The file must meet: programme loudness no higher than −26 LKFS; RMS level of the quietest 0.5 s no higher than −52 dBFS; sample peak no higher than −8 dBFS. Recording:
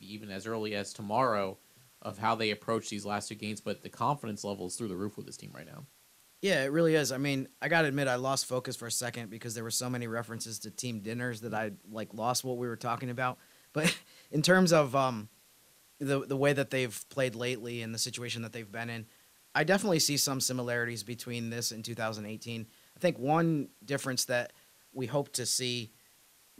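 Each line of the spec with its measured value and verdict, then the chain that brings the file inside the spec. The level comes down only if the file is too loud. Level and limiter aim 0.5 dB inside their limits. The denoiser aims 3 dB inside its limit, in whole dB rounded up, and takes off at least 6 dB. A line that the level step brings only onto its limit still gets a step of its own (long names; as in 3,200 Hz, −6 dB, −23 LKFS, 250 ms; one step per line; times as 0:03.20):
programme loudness −32.0 LKFS: in spec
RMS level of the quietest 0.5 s −63 dBFS: in spec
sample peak −12.0 dBFS: in spec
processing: no processing needed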